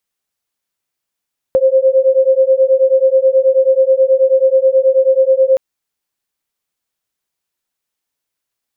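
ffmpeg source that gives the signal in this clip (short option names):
-f lavfi -i "aevalsrc='0.282*(sin(2*PI*524*t)+sin(2*PI*533.3*t))':d=4.02:s=44100"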